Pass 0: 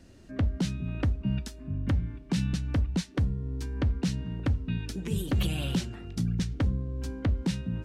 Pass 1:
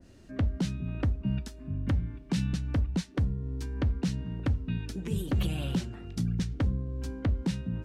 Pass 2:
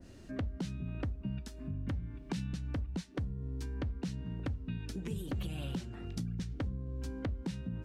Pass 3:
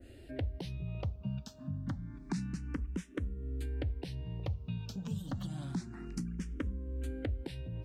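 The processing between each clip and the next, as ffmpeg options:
-af "adynamicequalizer=threshold=0.00316:dfrequency=1800:dqfactor=0.7:tfrequency=1800:tqfactor=0.7:attack=5:release=100:ratio=0.375:range=2.5:mode=cutabove:tftype=highshelf,volume=-1dB"
-af "acompressor=threshold=-39dB:ratio=3,volume=1.5dB"
-filter_complex "[0:a]asplit=2[a][b];[b]afreqshift=0.28[c];[a][c]amix=inputs=2:normalize=1,volume=2.5dB"

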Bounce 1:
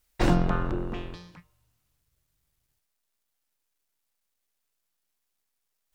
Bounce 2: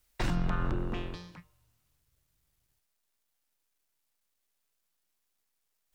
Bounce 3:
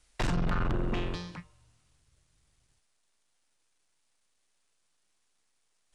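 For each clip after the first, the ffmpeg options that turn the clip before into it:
-filter_complex "[0:a]acrossover=split=220|1000[a][b][c];[b]acompressor=threshold=-37dB:ratio=6[d];[a][d][c]amix=inputs=3:normalize=0,alimiter=limit=-20.5dB:level=0:latency=1:release=71"
-af "aresample=22050,aresample=44100,asoftclip=type=tanh:threshold=-31.5dB,volume=7dB"

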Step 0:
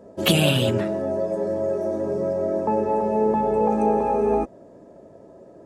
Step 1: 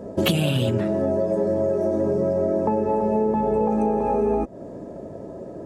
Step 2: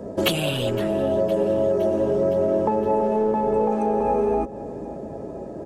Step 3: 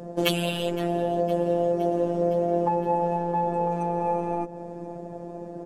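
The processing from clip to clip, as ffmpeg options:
-af "lowshelf=f=390:g=7,acompressor=threshold=-26dB:ratio=6,volume=7dB"
-filter_complex "[0:a]aecho=1:1:513|1026|1539|2052|2565:0.126|0.0755|0.0453|0.0272|0.0163,acrossover=split=310|960[a][b][c];[a]volume=30.5dB,asoftclip=hard,volume=-30.5dB[d];[d][b][c]amix=inputs=3:normalize=0,volume=1.5dB"
-af "afftfilt=real='hypot(re,im)*cos(PI*b)':imag='0':win_size=1024:overlap=0.75"

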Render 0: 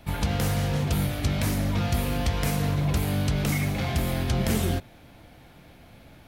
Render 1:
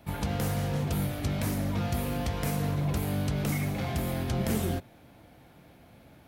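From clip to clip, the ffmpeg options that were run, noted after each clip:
-af "highpass=f=96:p=1,equalizer=f=3.7k:t=o:w=2.8:g=-5,volume=-2dB"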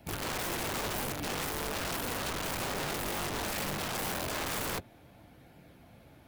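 -filter_complex "[0:a]acrossover=split=550|3100[a][b][c];[c]alimiter=level_in=10dB:limit=-24dB:level=0:latency=1:release=443,volume=-10dB[d];[a][b][d]amix=inputs=3:normalize=0,flanger=delay=0.4:depth=5.7:regen=-65:speed=0.36:shape=sinusoidal,aeval=exprs='(mod(42.2*val(0)+1,2)-1)/42.2':c=same,volume=2.5dB"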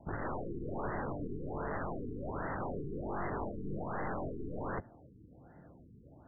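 -af "aeval=exprs='(tanh(50.1*val(0)+0.6)-tanh(0.6))/50.1':c=same,afftfilt=real='re*lt(b*sr/1024,440*pow(2100/440,0.5+0.5*sin(2*PI*1.3*pts/sr)))':imag='im*lt(b*sr/1024,440*pow(2100/440,0.5+0.5*sin(2*PI*1.3*pts/sr)))':win_size=1024:overlap=0.75,volume=3dB"

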